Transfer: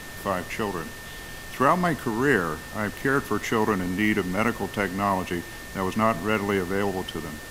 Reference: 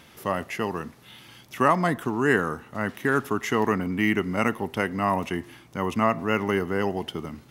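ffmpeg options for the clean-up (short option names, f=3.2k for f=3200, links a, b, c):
-af "bandreject=f=1.8k:w=30,afftdn=nr=11:nf=-39"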